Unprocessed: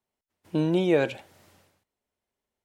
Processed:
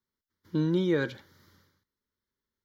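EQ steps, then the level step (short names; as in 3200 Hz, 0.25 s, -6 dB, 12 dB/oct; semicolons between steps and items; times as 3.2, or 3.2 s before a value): fixed phaser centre 2600 Hz, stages 6; 0.0 dB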